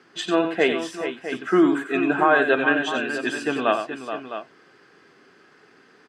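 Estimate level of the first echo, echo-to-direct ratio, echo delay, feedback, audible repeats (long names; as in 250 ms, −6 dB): −8.5 dB, −5.0 dB, 92 ms, repeats not evenly spaced, 3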